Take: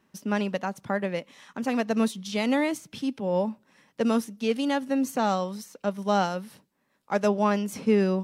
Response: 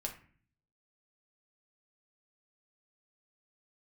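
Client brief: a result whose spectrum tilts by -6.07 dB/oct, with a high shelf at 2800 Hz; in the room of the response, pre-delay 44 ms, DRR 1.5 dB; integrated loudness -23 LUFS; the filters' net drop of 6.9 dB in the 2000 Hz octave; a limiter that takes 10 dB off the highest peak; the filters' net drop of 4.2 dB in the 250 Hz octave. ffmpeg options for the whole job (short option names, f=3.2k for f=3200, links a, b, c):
-filter_complex "[0:a]equalizer=f=250:t=o:g=-5,equalizer=f=2k:t=o:g=-6,highshelf=f=2.8k:g=-7.5,alimiter=limit=-23dB:level=0:latency=1,asplit=2[a][b];[1:a]atrim=start_sample=2205,adelay=44[c];[b][c]afir=irnorm=-1:irlink=0,volume=-1dB[d];[a][d]amix=inputs=2:normalize=0,volume=8.5dB"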